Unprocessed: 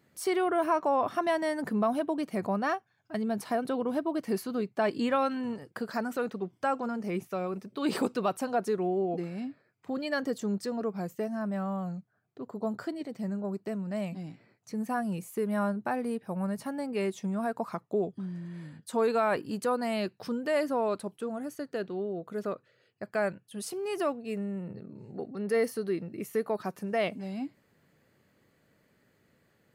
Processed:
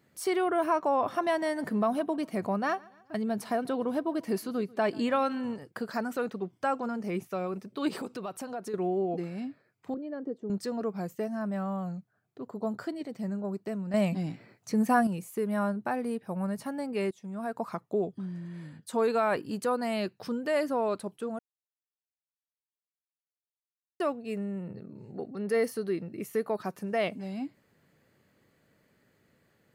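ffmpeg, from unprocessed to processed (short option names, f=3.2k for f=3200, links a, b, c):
-filter_complex "[0:a]asettb=1/sr,asplit=3[a][b][c];[a]atrim=end=0.824[d];[b]atrim=start=0.82:end=5.54,asetpts=PTS-STARTPTS,afade=t=in:d=0.004:c=qsin,afade=t=out:st=4.716:d=0.004:c=qsin,aecho=1:1:140|280|420:0.0631|0.0303|0.0145,atrim=end_sample=208152[e];[c]atrim=start=5.536[f];[d][e]acrossfade=d=0.004:c1=hsin:c2=qsin[g];[g][f]acrossfade=d=0.004:c1=qsin:c2=hsin,asettb=1/sr,asplit=3[h][i][j];[h]atrim=end=7.884[k];[i]atrim=start=7.88:end=8.74,asetpts=PTS-STARTPTS,afade=t=in:d=0.004:c=qsin,afade=t=out:st=0.856:d=0.004:c=qsin,acompressor=threshold=-37dB:ratio=2.5:attack=3.2:release=140:knee=1:detection=peak[l];[j]atrim=start=8.736[m];[k][l]acrossfade=d=0.004:c1=hsin:c2=qsin[n];[n][m]acrossfade=d=0.004:c1=qsin:c2=hsin,asettb=1/sr,asplit=3[o][p][q];[o]atrim=end=9.944[r];[p]atrim=start=9.94:end=10.5,asetpts=PTS-STARTPTS,afade=t=in:d=0.004:c=qsin,afade=t=out:st=0.556:d=0.004:c=qsin,bandpass=f=350:t=q:w=1.9[s];[q]atrim=start=10.496[t];[r][s]acrossfade=d=0.004:c1=hsin:c2=qsin[u];[u][t]acrossfade=d=0.004:c1=qsin:c2=hsin,asplit=6[v][w][x][y][z][aa];[v]atrim=end=13.942[ab];[w]atrim=start=13.938:end=15.072,asetpts=PTS-STARTPTS,volume=7.5dB[ac];[x]atrim=start=15.068:end=17.11,asetpts=PTS-STARTPTS,afade=t=out:st=2.038:d=0.004:c=hsin:silence=0.133352[ad];[y]atrim=start=17.11:end=21.39,asetpts=PTS-STARTPTS,afade=t=in:d=0.54:silence=0.133352,afade=t=out:st=4.276:d=0.004:c=hsin[ae];[z]atrim=start=21.39:end=24,asetpts=PTS-STARTPTS,volume=0[af];[aa]atrim=start=24,asetpts=PTS-STARTPTS,afade=t=in:d=0.004:c=hsin[ag];[ab][ac]acrossfade=d=0.004:c1=hsin:c2=hsin[ah];[ad][ae][af][ag]concat=n=4:v=0:a=1[ai];[ah][ai]acrossfade=d=0.004:c1=hsin:c2=hsin"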